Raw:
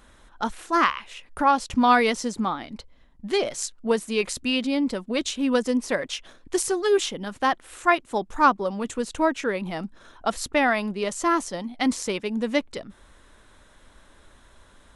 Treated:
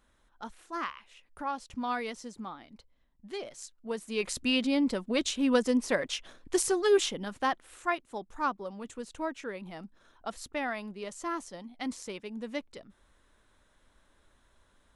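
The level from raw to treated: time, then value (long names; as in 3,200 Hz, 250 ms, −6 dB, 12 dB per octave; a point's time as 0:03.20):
0:03.81 −15 dB
0:04.39 −3 dB
0:07.08 −3 dB
0:08.12 −12.5 dB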